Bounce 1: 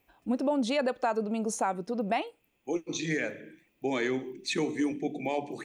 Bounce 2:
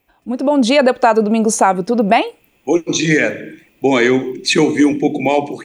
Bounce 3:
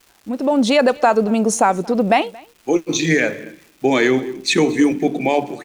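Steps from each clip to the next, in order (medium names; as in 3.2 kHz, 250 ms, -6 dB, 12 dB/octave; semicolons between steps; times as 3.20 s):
level rider gain up to 12 dB; trim +5 dB
delay 227 ms -22.5 dB; in parallel at -9.5 dB: crossover distortion -29 dBFS; on the sum: crackle 470 per s -33 dBFS; trim -5 dB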